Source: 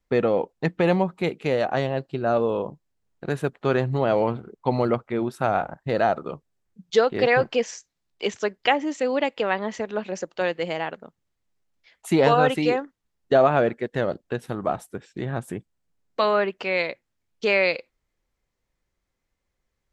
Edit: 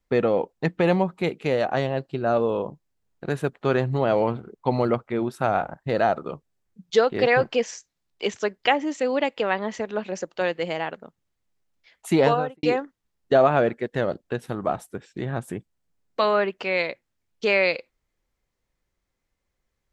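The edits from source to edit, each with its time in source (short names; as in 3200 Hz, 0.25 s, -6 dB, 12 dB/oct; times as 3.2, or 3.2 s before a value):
12.19–12.63 studio fade out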